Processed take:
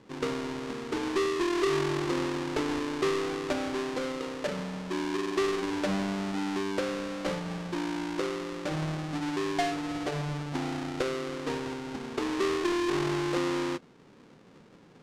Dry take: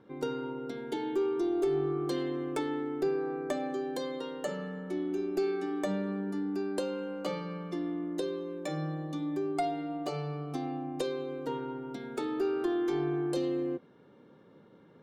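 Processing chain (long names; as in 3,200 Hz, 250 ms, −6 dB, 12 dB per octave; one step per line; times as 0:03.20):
each half-wave held at its own peak
low-pass filter 6,500 Hz 12 dB per octave
level −1.5 dB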